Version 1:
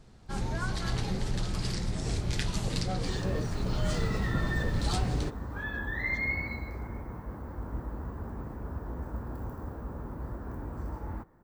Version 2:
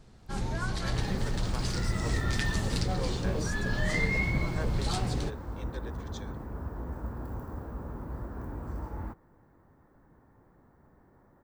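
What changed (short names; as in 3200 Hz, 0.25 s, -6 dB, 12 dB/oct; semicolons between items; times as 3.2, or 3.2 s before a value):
speech +11.5 dB; second sound: entry -2.10 s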